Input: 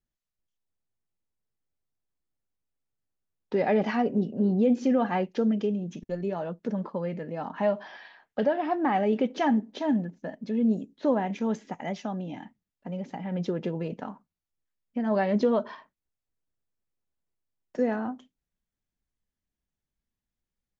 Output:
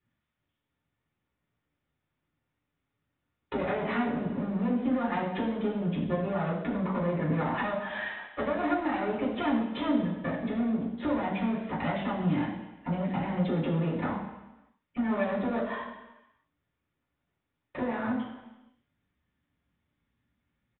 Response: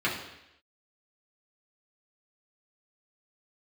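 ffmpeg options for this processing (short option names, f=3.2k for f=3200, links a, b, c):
-filter_complex "[0:a]acompressor=threshold=-35dB:ratio=10,aresample=8000,aeval=exprs='clip(val(0),-1,0.00562)':c=same,aresample=44100[a];[1:a]atrim=start_sample=2205,asetrate=36162,aresample=44100[b];[a][b]afir=irnorm=-1:irlink=0"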